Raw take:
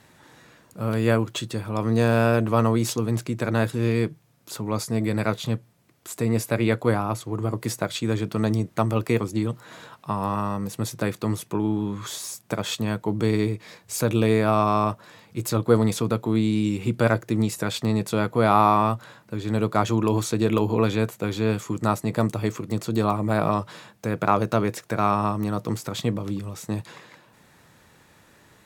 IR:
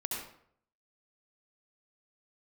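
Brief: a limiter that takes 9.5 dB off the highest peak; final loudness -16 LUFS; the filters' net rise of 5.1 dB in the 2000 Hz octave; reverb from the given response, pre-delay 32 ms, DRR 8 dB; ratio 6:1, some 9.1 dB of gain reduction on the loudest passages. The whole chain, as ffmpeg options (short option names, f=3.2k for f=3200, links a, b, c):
-filter_complex "[0:a]equalizer=f=2k:t=o:g=7,acompressor=threshold=-21dB:ratio=6,alimiter=limit=-16dB:level=0:latency=1,asplit=2[a][b];[1:a]atrim=start_sample=2205,adelay=32[c];[b][c]afir=irnorm=-1:irlink=0,volume=-11dB[d];[a][d]amix=inputs=2:normalize=0,volume=12.5dB"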